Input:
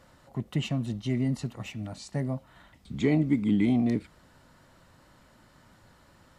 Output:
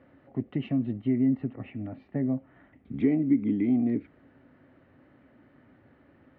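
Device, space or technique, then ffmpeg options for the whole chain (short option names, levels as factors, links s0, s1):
bass amplifier: -filter_complex "[0:a]asettb=1/sr,asplit=3[s0][s1][s2];[s0]atrim=end=0.924[s3];[s1]atrim=start=0.92:end=2.94,asetpts=PTS-STARTPTS,afade=t=in:d=0.004:c=qsin,afade=t=out:st=2.016:d=0.004:c=qsin,lowpass=2800[s4];[s2]atrim=start=2.936[s5];[s3][s4]acrossfade=d=0.004:c1=hsin:c2=qsin[s6];[s6][s5]acrossfade=d=0.004:c1=qsin:c2=hsin,acompressor=threshold=0.0501:ratio=4,highpass=87,equalizer=f=180:t=q:w=4:g=-5,equalizer=f=270:t=q:w=4:g=10,equalizer=f=390:t=q:w=4:g=4,equalizer=f=980:t=q:w=4:g=-10,equalizer=f=1400:t=q:w=4:g=-5,lowpass=f=2300:w=0.5412,lowpass=f=2300:w=1.3066"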